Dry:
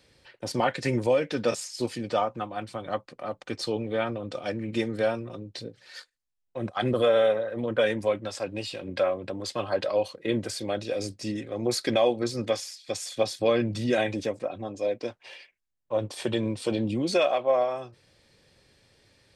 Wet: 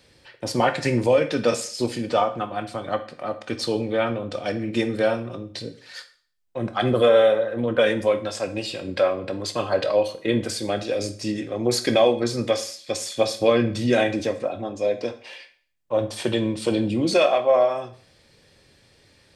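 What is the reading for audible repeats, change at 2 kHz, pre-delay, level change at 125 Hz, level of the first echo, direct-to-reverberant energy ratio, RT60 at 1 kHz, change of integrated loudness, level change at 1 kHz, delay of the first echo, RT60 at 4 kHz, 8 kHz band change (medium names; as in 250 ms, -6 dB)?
no echo, +5.0 dB, 13 ms, +4.5 dB, no echo, 9.0 dB, 0.45 s, +5.0 dB, +5.0 dB, no echo, 0.50 s, +5.0 dB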